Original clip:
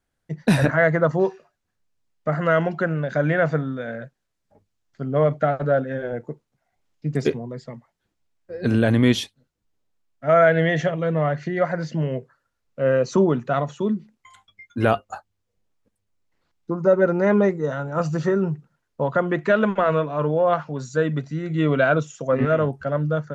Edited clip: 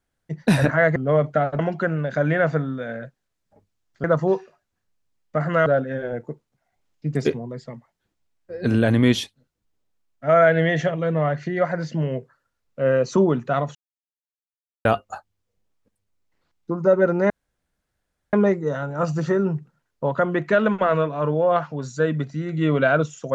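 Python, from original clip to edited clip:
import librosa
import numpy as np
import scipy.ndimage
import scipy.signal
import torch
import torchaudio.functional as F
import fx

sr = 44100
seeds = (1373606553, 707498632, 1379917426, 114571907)

y = fx.edit(x, sr, fx.swap(start_s=0.96, length_s=1.62, other_s=5.03, other_length_s=0.63),
    fx.silence(start_s=13.75, length_s=1.1),
    fx.insert_room_tone(at_s=17.3, length_s=1.03), tone=tone)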